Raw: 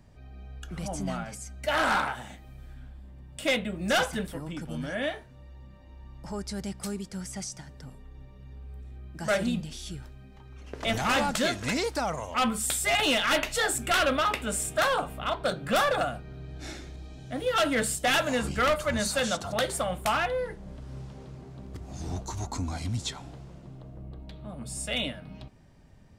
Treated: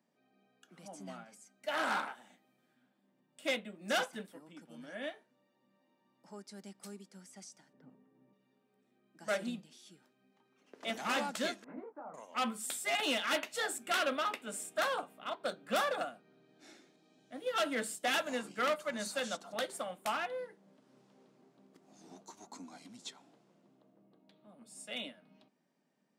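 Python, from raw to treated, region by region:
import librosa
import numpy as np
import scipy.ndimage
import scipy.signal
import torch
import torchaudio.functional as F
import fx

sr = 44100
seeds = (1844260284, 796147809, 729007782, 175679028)

y = fx.chain(x, sr, fx.lowpass(hz=2300.0, slope=12),
    fx.low_shelf(hz=400.0, db=12.0), at=(7.73, 8.33))
y = fx.chain(y, sr, fx.lowpass(hz=1300.0, slope=24),
    fx.hum_notches(base_hz=60, count=4),
    fx.detune_double(cents=47), at=(11.64, 12.14))
y = scipy.signal.sosfilt(scipy.signal.butter(6, 190.0, 'highpass', fs=sr, output='sos'), y)
y = fx.upward_expand(y, sr, threshold_db=-40.0, expansion=1.5)
y = y * 10.0 ** (-7.0 / 20.0)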